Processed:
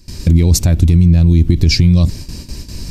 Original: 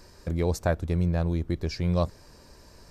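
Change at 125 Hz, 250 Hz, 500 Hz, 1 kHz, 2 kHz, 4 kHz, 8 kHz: +17.5 dB, +15.5 dB, +3.0 dB, no reading, +11.0 dB, +21.0 dB, +22.0 dB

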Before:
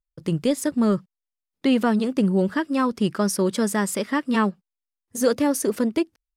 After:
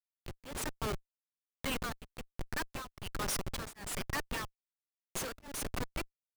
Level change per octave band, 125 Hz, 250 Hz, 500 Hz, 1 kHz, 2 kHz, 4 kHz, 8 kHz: -15.0 dB, -25.0 dB, -20.5 dB, -14.0 dB, -9.5 dB, -8.0 dB, -9.5 dB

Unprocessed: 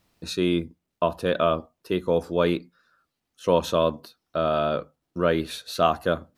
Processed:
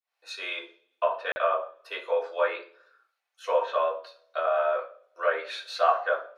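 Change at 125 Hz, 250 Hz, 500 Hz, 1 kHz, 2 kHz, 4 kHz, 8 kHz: under -40 dB, under -25 dB, -3.5 dB, 0.0 dB, +2.5 dB, -5.5 dB, under -10 dB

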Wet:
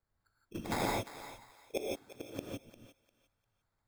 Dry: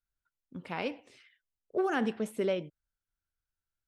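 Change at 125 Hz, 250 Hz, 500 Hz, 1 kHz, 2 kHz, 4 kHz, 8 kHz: +0.5 dB, -7.0 dB, -7.5 dB, -2.0 dB, -5.0 dB, +0.5 dB, +7.0 dB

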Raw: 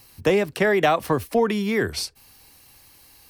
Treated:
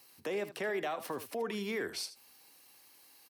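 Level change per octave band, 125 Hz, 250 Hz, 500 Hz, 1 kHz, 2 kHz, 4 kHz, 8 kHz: -21.0 dB, -17.0 dB, -15.5 dB, -16.5 dB, -14.0 dB, -11.5 dB, -10.5 dB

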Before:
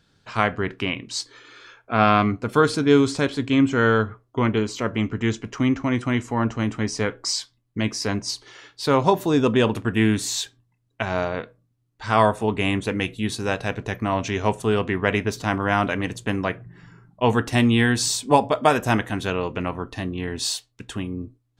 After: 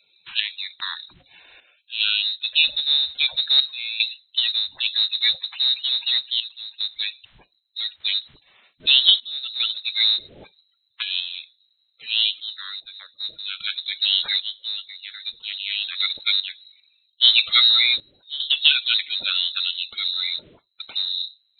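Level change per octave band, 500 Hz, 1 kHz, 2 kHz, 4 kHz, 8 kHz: under -30 dB, -20.0 dB, -2.0 dB, +14.5 dB, under -40 dB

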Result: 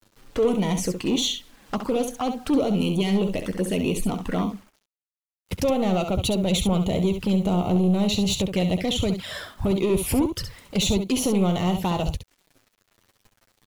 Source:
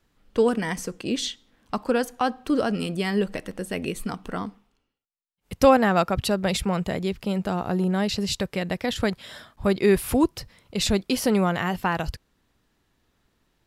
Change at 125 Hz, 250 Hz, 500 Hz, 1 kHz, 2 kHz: +4.5 dB, +2.5 dB, -1.0 dB, -4.0 dB, -5.5 dB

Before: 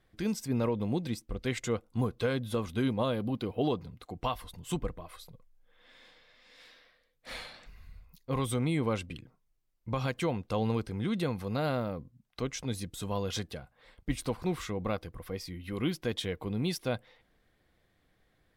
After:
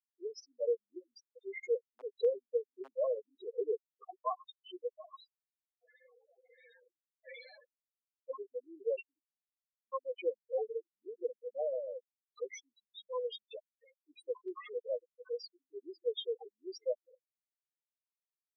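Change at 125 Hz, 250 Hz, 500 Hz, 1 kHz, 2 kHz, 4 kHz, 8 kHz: under -40 dB, -23.0 dB, -1.0 dB, -8.0 dB, -12.5 dB, -9.5 dB, under -15 dB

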